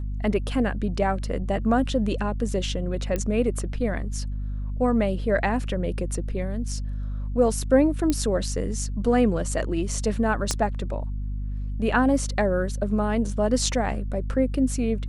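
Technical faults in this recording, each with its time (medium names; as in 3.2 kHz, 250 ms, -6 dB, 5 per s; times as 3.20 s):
hum 50 Hz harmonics 5 -29 dBFS
3.16 s: pop -14 dBFS
8.10 s: pop -10 dBFS
10.51 s: pop -10 dBFS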